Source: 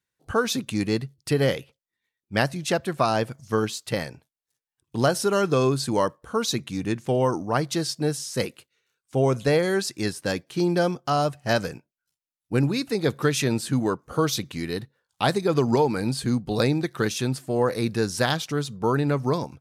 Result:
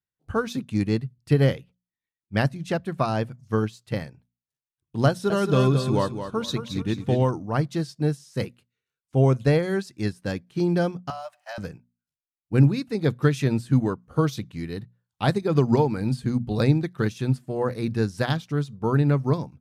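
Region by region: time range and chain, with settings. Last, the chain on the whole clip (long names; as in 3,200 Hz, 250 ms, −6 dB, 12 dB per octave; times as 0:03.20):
0:05.08–0:07.30: parametric band 3,600 Hz +8 dB 0.29 octaves + repeating echo 220 ms, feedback 34%, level −6 dB
0:11.10–0:11.58: mu-law and A-law mismatch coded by mu + Butterworth high-pass 570 Hz 96 dB per octave + downward compressor 5 to 1, threshold −24 dBFS
whole clip: bass and treble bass +9 dB, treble −5 dB; mains-hum notches 60/120/180/240 Hz; expander for the loud parts 1.5 to 1, over −37 dBFS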